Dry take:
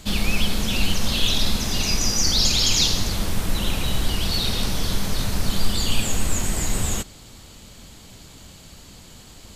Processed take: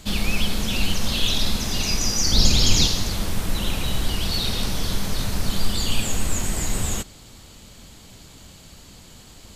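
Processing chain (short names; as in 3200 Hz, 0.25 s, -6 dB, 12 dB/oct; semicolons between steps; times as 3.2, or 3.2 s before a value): 2.32–2.87 low shelf 500 Hz +8 dB; gain -1 dB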